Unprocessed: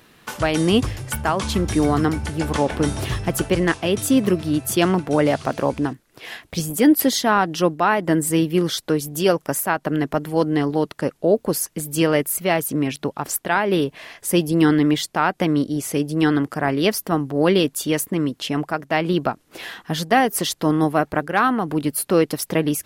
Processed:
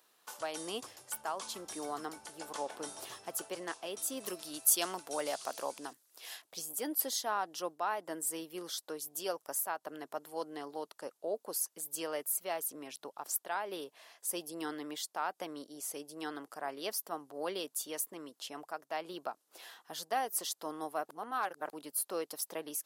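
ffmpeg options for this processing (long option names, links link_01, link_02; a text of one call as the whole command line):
ffmpeg -i in.wav -filter_complex "[0:a]asettb=1/sr,asplit=3[link_01][link_02][link_03];[link_01]atrim=end=4.204[link_04];[link_02]atrim=start=4.2:end=6.42,asetpts=PTS-STARTPTS,afade=type=in:duration=0.004:curve=qsin,afade=type=out:start_time=2.216:duration=0.004:curve=qsin,highshelf=frequency=2500:gain=10.5[link_05];[link_03]atrim=start=6.416[link_06];[link_04][link_05]acrossfade=duration=0.004:curve1=hsin:curve2=qsin[link_07];[link_07][link_06]acrossfade=duration=0.004:curve1=qsin:curve2=hsin,asplit=3[link_08][link_09][link_10];[link_08]atrim=end=21.092[link_11];[link_09]atrim=start=21.088:end=21.732,asetpts=PTS-STARTPTS,areverse[link_12];[link_10]atrim=start=21.728[link_13];[link_11][link_12]acrossfade=duration=0.004:curve1=hsin:curve2=hsin[link_14];[link_14][link_13]acrossfade=duration=0.004:curve1=hsin:curve2=hsin,highpass=790,equalizer=frequency=2100:width_type=o:width=1.7:gain=-12.5,volume=-9dB" out.wav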